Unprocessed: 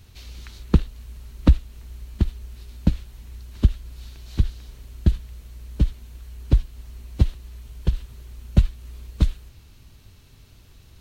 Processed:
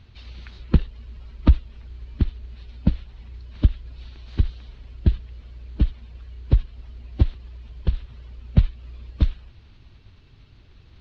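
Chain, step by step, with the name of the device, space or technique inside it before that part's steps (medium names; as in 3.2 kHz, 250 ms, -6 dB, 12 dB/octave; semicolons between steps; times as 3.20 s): clip after many re-uploads (low-pass 4.2 kHz 24 dB/octave; coarse spectral quantiser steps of 15 dB)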